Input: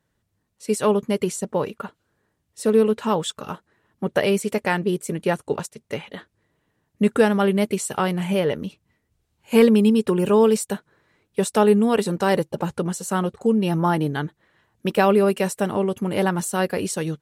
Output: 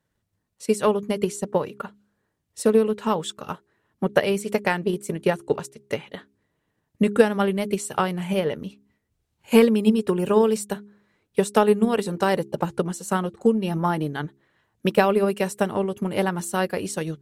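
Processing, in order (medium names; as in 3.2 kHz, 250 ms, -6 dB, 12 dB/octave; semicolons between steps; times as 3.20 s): de-hum 68.28 Hz, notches 6; transient shaper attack +7 dB, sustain 0 dB; trim -4 dB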